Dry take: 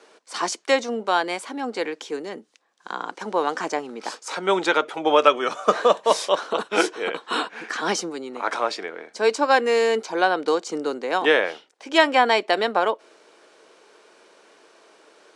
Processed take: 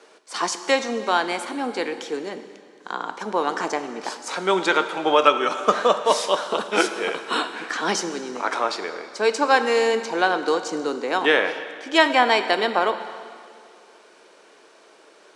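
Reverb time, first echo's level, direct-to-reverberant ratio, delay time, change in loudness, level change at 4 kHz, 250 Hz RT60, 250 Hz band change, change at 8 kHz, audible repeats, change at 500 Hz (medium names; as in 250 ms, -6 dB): 2.3 s, no echo, 9.0 dB, no echo, +0.5 dB, +1.5 dB, 2.2 s, +1.0 dB, +1.5 dB, no echo, -0.5 dB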